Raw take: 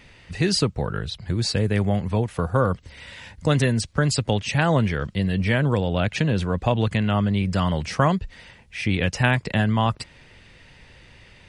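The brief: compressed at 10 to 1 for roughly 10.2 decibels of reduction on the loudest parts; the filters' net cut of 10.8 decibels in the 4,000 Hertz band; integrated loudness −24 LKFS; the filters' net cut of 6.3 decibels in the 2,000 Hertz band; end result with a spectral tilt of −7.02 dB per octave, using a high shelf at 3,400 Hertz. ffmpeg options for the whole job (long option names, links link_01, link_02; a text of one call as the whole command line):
ffmpeg -i in.wav -af "equalizer=frequency=2000:width_type=o:gain=-4.5,highshelf=frequency=3400:gain=-8,equalizer=frequency=4000:width_type=o:gain=-7,acompressor=threshold=-26dB:ratio=10,volume=8dB" out.wav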